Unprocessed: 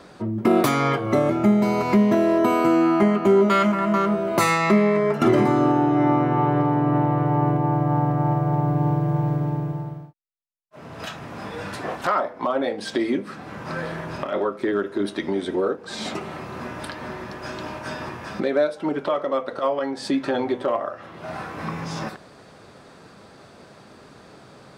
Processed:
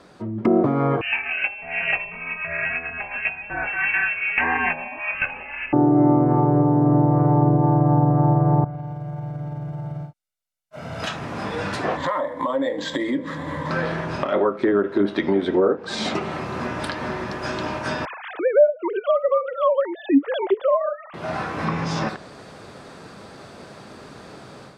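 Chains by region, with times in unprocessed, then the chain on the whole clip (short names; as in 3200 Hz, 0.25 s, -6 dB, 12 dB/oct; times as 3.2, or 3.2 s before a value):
1.01–5.73 chorus 1.8 Hz, delay 19 ms, depth 5.9 ms + inverted band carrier 2900 Hz
8.64–11.03 bell 830 Hz -4.5 dB 0.25 oct + compressor 20:1, threshold -33 dBFS + comb 1.4 ms, depth 58%
11.97–13.71 ripple EQ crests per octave 1.1, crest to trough 14 dB + compressor 2.5:1, threshold -29 dBFS + decimation joined by straight lines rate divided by 4×
18.05–21.14 sine-wave speech + mismatched tape noise reduction encoder only
whole clip: treble ducked by the level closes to 680 Hz, closed at -16 dBFS; AGC gain up to 9 dB; gain -3.5 dB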